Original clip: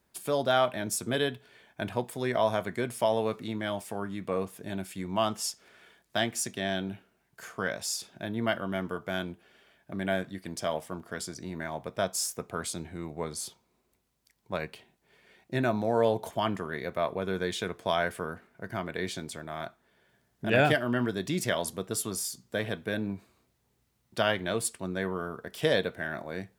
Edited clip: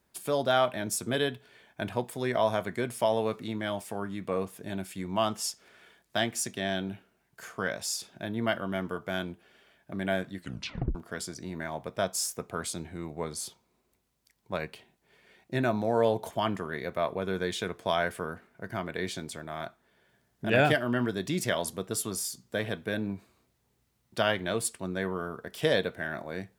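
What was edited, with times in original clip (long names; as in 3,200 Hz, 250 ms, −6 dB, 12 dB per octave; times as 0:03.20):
0:10.37: tape stop 0.58 s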